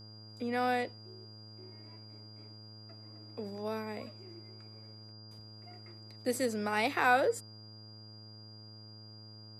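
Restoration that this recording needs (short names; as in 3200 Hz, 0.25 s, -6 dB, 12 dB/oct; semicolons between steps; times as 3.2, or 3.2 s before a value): de-hum 108 Hz, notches 15; notch 4800 Hz, Q 30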